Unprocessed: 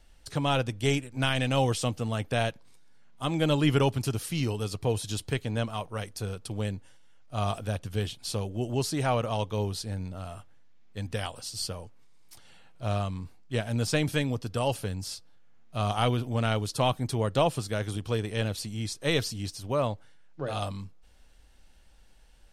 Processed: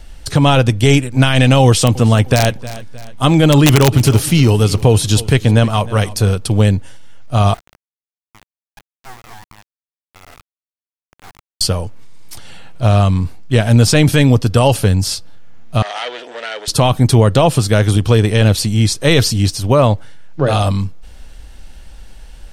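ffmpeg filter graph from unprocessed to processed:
-filter_complex "[0:a]asettb=1/sr,asplit=3[a][b][c];[a]atrim=end=1.644[d];[b]atrim=start=1.64:end=6.33,asetpts=PTS-STARTPTS,afade=t=in:d=0.004:c=qsin,afade=t=out:st=4.686:d=0.004:c=qsin,aeval=exprs='(mod(5.31*val(0)+1,2)-1)/5.31':c=same,aecho=1:1:310|620|930:0.1|0.041|0.0168,atrim=end_sample=206829[e];[c]atrim=start=6.326[f];[d][e]acrossfade=d=0.004:c1=hsin:c2=qsin[g];[g][f]acrossfade=d=0.004:c1=qsin:c2=hsin,asettb=1/sr,asplit=3[h][i][j];[h]atrim=end=7.544[k];[i]atrim=start=7.54:end=11.61,asetpts=PTS-STARTPTS,afade=t=in:d=0.004:c=qsin,afade=t=out:st=4.066:d=0.004:c=qsin,acompressor=threshold=-45dB:ratio=5:attack=3.2:release=140:knee=1:detection=peak,asuperpass=centerf=1000:order=20:qfactor=1.4,acrusher=bits=6:dc=4:mix=0:aa=0.000001[l];[j]atrim=start=11.606[m];[k][l]acrossfade=d=0.004:c1=hsin:c2=qsin[n];[n][m]acrossfade=d=0.004:c1=qsin:c2=hsin,asettb=1/sr,asplit=3[o][p][q];[o]atrim=end=15.824[r];[p]atrim=start=15.82:end=16.68,asetpts=PTS-STARTPTS,afade=t=in:d=0.004:c=qsin,afade=t=out:st=0.856:d=0.004:c=qsin,acompressor=threshold=-30dB:ratio=5:attack=3.2:release=140:knee=1:detection=peak,asoftclip=type=hard:threshold=-33dB,highpass=f=480:w=0.5412,highpass=f=480:w=1.3066,equalizer=f=780:t=q:w=4:g=-6,equalizer=f=1.1k:t=q:w=4:g=-7,equalizer=f=1.8k:t=q:w=4:g=7,equalizer=f=3.3k:t=q:w=4:g=4,equalizer=f=6.5k:t=q:w=4:g=-3,lowpass=f=7.2k:w=0.5412,lowpass=f=7.2k:w=1.3066[s];[q]atrim=start=16.676[t];[r][s]acrossfade=d=0.004:c1=hsin:c2=qsin[u];[u][t]acrossfade=d=0.004:c1=qsin:c2=hsin,lowshelf=f=170:g=5.5,alimiter=level_in=18.5dB:limit=-1dB:release=50:level=0:latency=1,volume=-1dB"

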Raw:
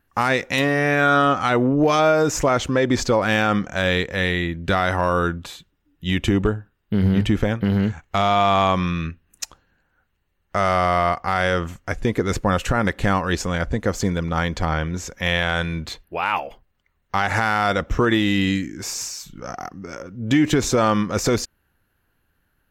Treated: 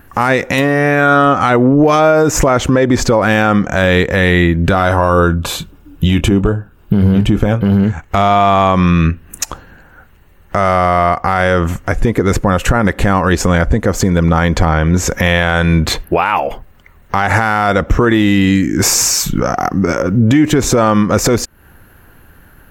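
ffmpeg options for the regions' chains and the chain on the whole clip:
-filter_complex "[0:a]asettb=1/sr,asplit=3[a][b][c];[a]atrim=end=4.714[d];[b]atrim=start=4.71:end=7.84,asetpts=PTS-STARTPTS,afade=t=in:d=0.004:c=qsin,afade=t=out:st=3.126:d=0.004:c=qsin,equalizer=f=1.9k:t=o:w=0.2:g=-11,aphaser=in_gain=1:out_gain=1:delay=2:decay=0.23:speed=1.9:type=sinusoidal,asplit=2[e][f];[f]adelay=25,volume=-13.5dB[g];[e][g]amix=inputs=2:normalize=0,atrim=end_sample=138033[h];[c]atrim=start=7.836[i];[d][h]acrossfade=d=0.004:c1=hsin:c2=qsin[j];[j][i]acrossfade=d=0.004:c1=qsin:c2=hsin,equalizer=f=4.2k:w=0.72:g=-7,acompressor=threshold=-34dB:ratio=5,alimiter=level_in=26.5dB:limit=-1dB:release=50:level=0:latency=1,volume=-1dB"

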